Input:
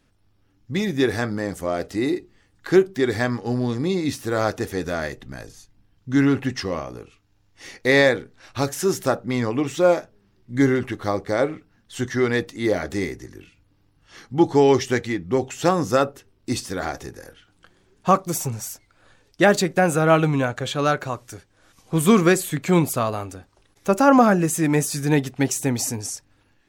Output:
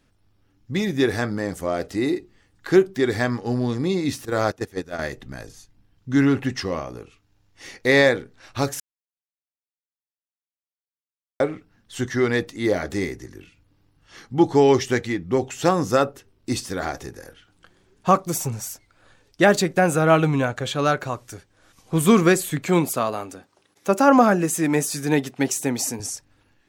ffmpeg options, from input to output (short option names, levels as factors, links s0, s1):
-filter_complex "[0:a]asettb=1/sr,asplit=3[s0][s1][s2];[s0]atrim=end=4.254[s3];[s1]atrim=start=4.25:end=4.99,asetpts=PTS-STARTPTS,afade=t=in:d=0.004:c=qsin,afade=t=out:st=0.736:d=0.004:c=qsin,agate=range=0.178:threshold=0.0562:ratio=16:release=100:detection=peak[s4];[s2]atrim=start=4.986[s5];[s3][s4]acrossfade=d=0.004:c1=hsin:c2=qsin[s6];[s6][s5]acrossfade=d=0.004:c1=qsin:c2=hsin,asettb=1/sr,asplit=3[s7][s8][s9];[s7]atrim=end=22.674[s10];[s8]atrim=start=22.67:end=26,asetpts=PTS-STARTPTS,afade=t=in:d=0.004:c=qsin,afade=t=out:st=3.326:d=0.004:c=qsin,highpass=180[s11];[s9]atrim=start=25.996[s12];[s10][s11]acrossfade=d=0.004:c1=hsin:c2=qsin[s13];[s13][s12]acrossfade=d=0.004:c1=qsin:c2=hsin,asplit=3[s14][s15][s16];[s14]atrim=end=8.8,asetpts=PTS-STARTPTS,afade=t=out:st=8.796:d=0.004:c=hsin[s17];[s15]atrim=start=8.8:end=11.4,asetpts=PTS-STARTPTS,volume=0[s18];[s16]atrim=start=11.4,asetpts=PTS-STARTPTS,afade=t=in:d=0.004:c=hsin[s19];[s17][s18][s19]concat=n=3:v=0:a=1"